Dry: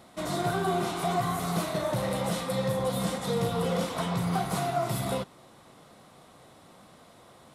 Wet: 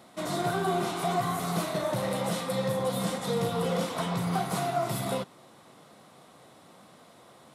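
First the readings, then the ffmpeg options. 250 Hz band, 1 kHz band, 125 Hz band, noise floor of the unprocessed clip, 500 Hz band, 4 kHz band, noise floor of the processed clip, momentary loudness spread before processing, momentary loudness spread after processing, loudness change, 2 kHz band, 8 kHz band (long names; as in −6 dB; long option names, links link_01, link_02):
−0.5 dB, 0.0 dB, −1.5 dB, −55 dBFS, 0.0 dB, 0.0 dB, −55 dBFS, 3 LU, 2 LU, −0.5 dB, 0.0 dB, 0.0 dB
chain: -af "highpass=120"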